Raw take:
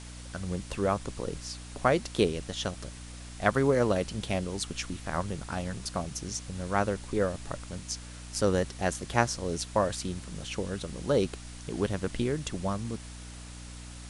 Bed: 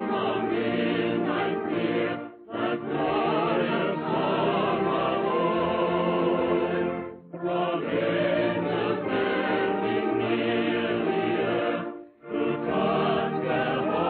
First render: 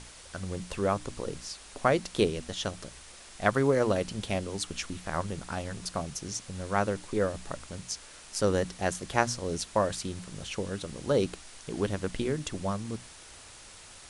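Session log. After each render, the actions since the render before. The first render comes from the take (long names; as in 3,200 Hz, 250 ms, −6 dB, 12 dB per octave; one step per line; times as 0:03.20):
mains-hum notches 60/120/180/240/300 Hz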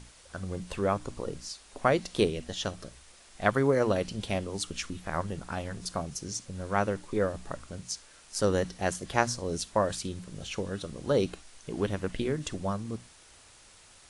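noise reduction from a noise print 6 dB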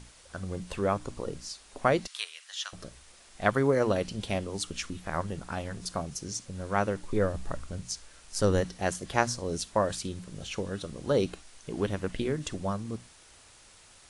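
0:02.07–0:02.73: high-pass filter 1,200 Hz 24 dB per octave
0:07.03–0:08.61: low-shelf EQ 86 Hz +11.5 dB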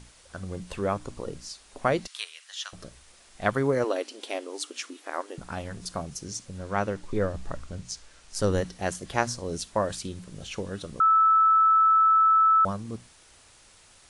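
0:03.84–0:05.38: linear-phase brick-wall high-pass 250 Hz
0:06.58–0:08.35: low-pass filter 8,600 Hz
0:11.00–0:12.65: beep over 1,310 Hz −16 dBFS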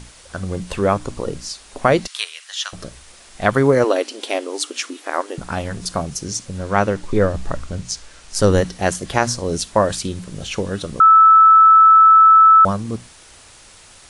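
boost into a limiter +10.5 dB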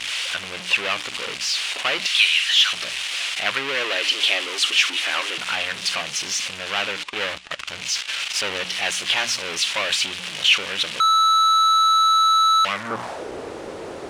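power curve on the samples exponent 0.35
band-pass filter sweep 2,800 Hz → 410 Hz, 0:12.67–0:13.26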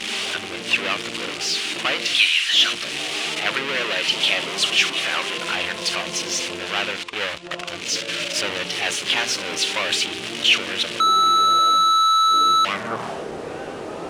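mix in bed −10 dB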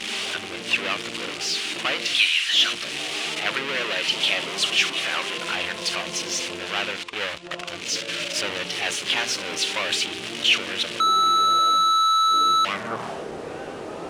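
level −2.5 dB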